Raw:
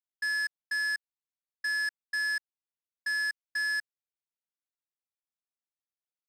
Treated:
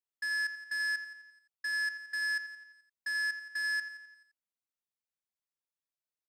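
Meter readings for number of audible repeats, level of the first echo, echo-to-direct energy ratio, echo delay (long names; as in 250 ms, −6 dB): 5, −12.5 dB, −11.0 dB, 86 ms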